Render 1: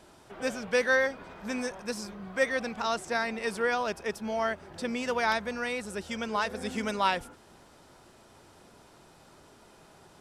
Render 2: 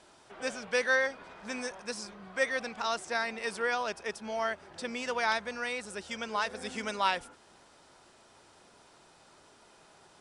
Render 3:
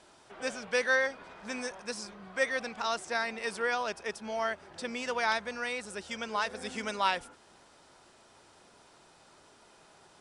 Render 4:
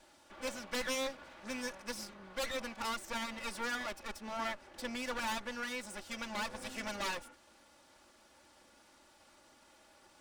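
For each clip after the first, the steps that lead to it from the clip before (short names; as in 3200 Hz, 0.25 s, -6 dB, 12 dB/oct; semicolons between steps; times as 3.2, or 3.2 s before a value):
elliptic low-pass 10000 Hz, stop band 40 dB; low shelf 360 Hz -9 dB
nothing audible
minimum comb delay 3.5 ms; wavefolder -27.5 dBFS; gain -2.5 dB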